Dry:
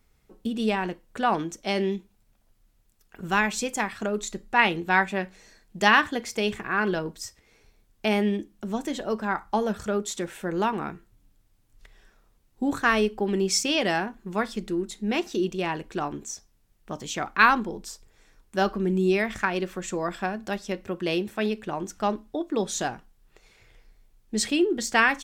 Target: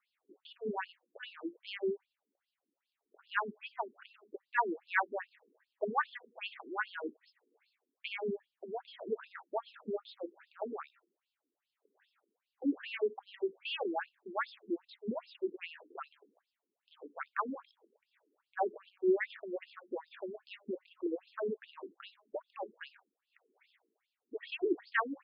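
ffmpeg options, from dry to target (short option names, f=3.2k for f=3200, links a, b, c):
-filter_complex "[0:a]acrossover=split=2800[a][b];[b]acompressor=threshold=-47dB:ratio=4:attack=1:release=60[c];[a][c]amix=inputs=2:normalize=0,afftfilt=real='re*between(b*sr/1024,300*pow(3800/300,0.5+0.5*sin(2*PI*2.5*pts/sr))/1.41,300*pow(3800/300,0.5+0.5*sin(2*PI*2.5*pts/sr))*1.41)':imag='im*between(b*sr/1024,300*pow(3800/300,0.5+0.5*sin(2*PI*2.5*pts/sr))/1.41,300*pow(3800/300,0.5+0.5*sin(2*PI*2.5*pts/sr))*1.41)':win_size=1024:overlap=0.75,volume=-4.5dB"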